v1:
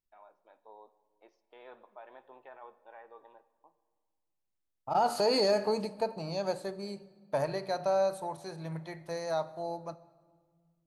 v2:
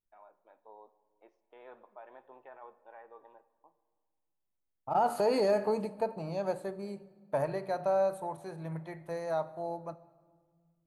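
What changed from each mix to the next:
master: add parametric band 5,000 Hz −13 dB 1.2 octaves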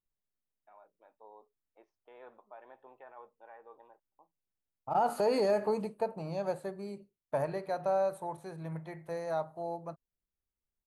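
first voice: entry +0.55 s
reverb: off

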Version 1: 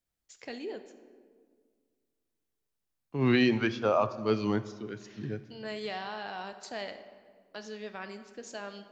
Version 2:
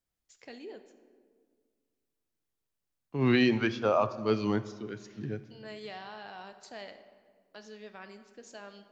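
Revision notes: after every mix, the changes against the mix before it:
first voice −6.0 dB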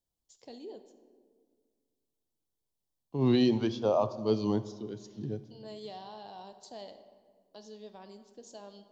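master: add flat-topped bell 1,800 Hz −14.5 dB 1.3 octaves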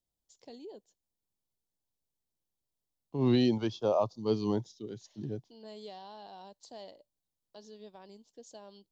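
reverb: off

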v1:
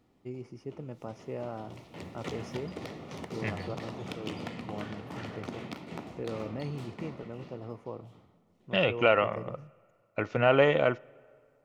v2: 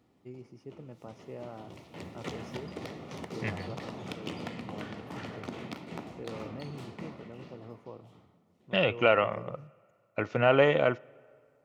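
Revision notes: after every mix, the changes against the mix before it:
first voice −5.5 dB
master: add high-pass filter 60 Hz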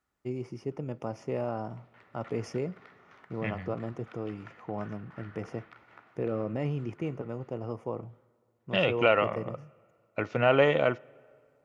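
first voice +11.0 dB
background: add resonant band-pass 1,500 Hz, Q 3.8

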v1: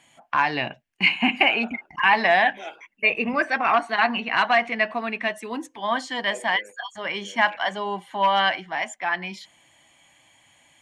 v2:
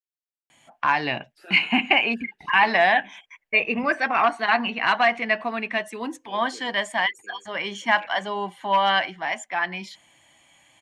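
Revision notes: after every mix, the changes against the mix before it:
first voice: entry +0.50 s
second voice: add flat-topped bell 770 Hz −16 dB 1.2 octaves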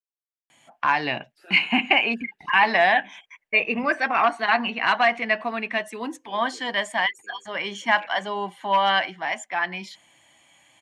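second voice −3.5 dB
master: add low-shelf EQ 69 Hz −8.5 dB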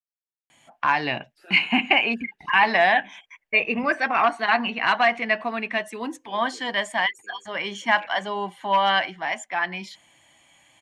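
master: add low-shelf EQ 69 Hz +8.5 dB

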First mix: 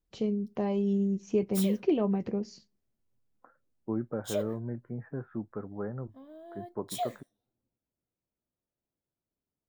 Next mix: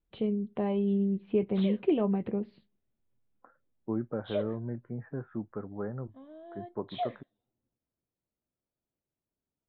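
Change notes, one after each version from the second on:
master: add Butterworth low-pass 3,800 Hz 72 dB per octave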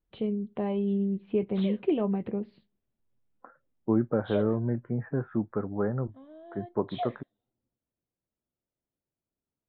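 second voice +7.5 dB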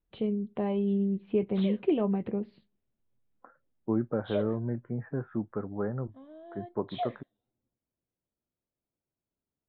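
second voice −3.5 dB

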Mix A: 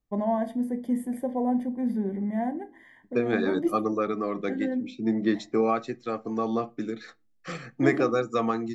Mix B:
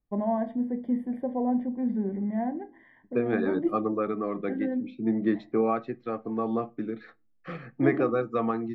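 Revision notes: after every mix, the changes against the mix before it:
master: add high-frequency loss of the air 440 metres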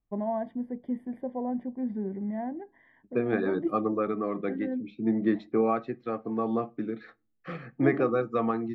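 first voice: send off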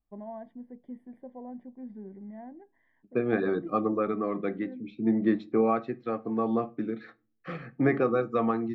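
first voice −10.5 dB
second voice: send +6.0 dB

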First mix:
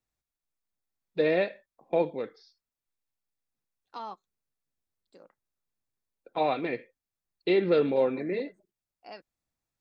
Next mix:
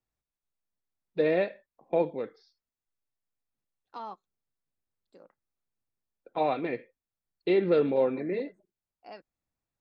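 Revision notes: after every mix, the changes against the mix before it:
master: add high-shelf EQ 2,600 Hz −7 dB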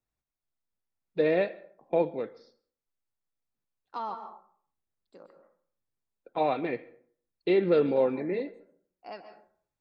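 second voice: add parametric band 1,100 Hz +3.5 dB 1 octave
reverb: on, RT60 0.55 s

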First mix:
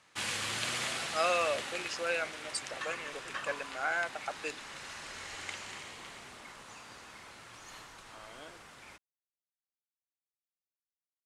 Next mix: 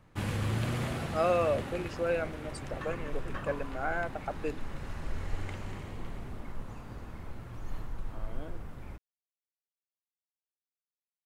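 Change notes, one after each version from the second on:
master: remove meter weighting curve ITU-R 468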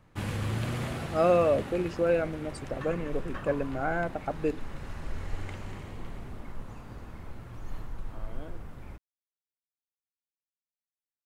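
speech: remove high-pass filter 770 Hz 6 dB per octave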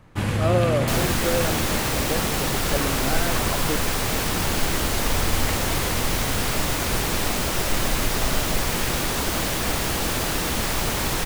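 speech: entry −0.75 s
first sound +9.0 dB
second sound: unmuted

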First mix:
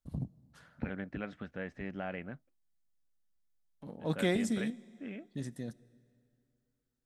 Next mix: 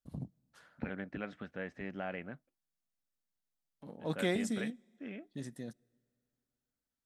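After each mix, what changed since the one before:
first voice: send −11.5 dB
master: add low-shelf EQ 100 Hz −10.5 dB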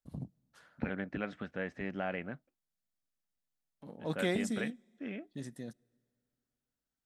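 second voice +3.5 dB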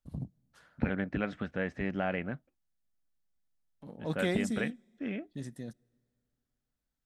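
second voice +3.5 dB
master: add low-shelf EQ 100 Hz +10.5 dB

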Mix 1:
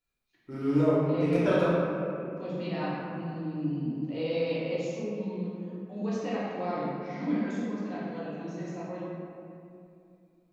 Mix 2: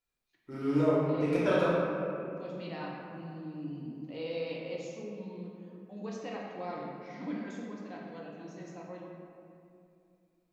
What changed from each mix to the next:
second voice: send −6.5 dB
master: add low-shelf EQ 380 Hz −4.5 dB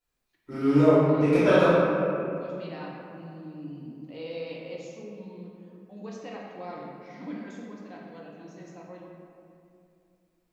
first voice: send +8.0 dB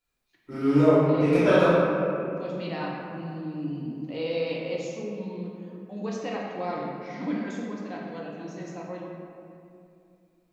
second voice +7.5 dB

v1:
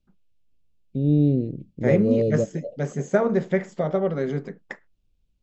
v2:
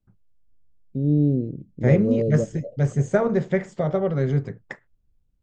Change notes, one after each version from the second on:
first voice: add parametric band 2,900 Hz −11.5 dB 2.8 octaves
second voice: remove linear-phase brick-wall band-pass 150–7,900 Hz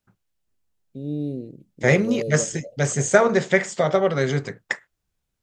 second voice +8.0 dB
master: add spectral tilt +4 dB per octave

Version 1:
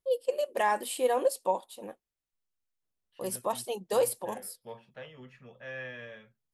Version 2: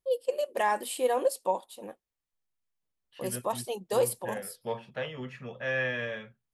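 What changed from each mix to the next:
second voice +10.5 dB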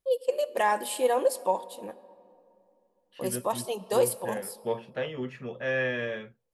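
second voice: add parametric band 340 Hz +8.5 dB 1 octave
reverb: on, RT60 2.7 s

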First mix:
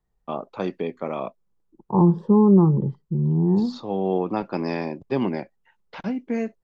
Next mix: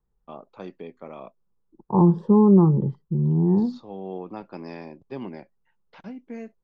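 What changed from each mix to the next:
first voice −11.0 dB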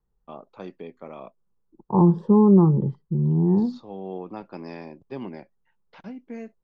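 nothing changed

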